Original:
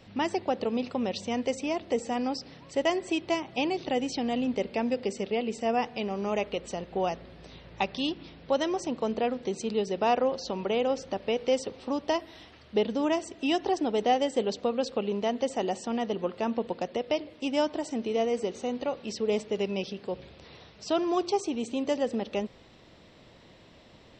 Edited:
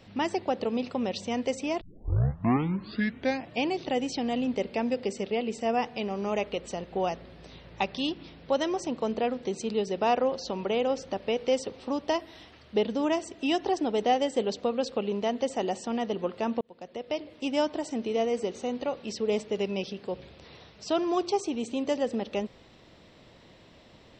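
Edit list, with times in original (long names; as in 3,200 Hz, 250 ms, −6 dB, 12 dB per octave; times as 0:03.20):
0:01.81: tape start 1.87 s
0:16.61–0:17.38: fade in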